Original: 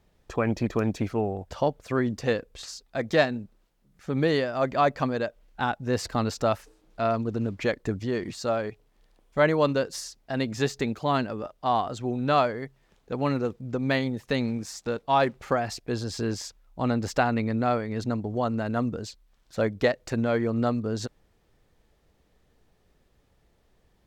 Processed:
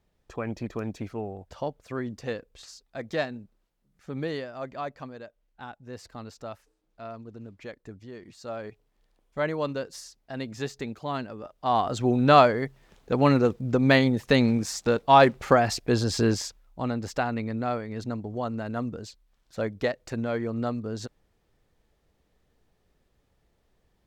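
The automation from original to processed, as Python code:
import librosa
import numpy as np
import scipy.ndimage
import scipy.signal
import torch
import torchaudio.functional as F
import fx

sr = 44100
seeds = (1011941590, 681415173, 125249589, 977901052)

y = fx.gain(x, sr, db=fx.line((4.14, -7.0), (5.17, -14.5), (8.26, -14.5), (8.66, -6.5), (11.39, -6.5), (12.0, 6.0), (16.27, 6.0), (16.91, -4.0)))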